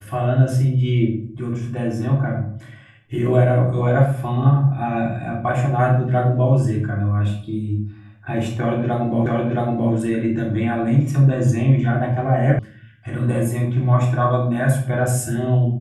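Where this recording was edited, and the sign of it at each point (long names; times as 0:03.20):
0:09.26: the same again, the last 0.67 s
0:12.59: cut off before it has died away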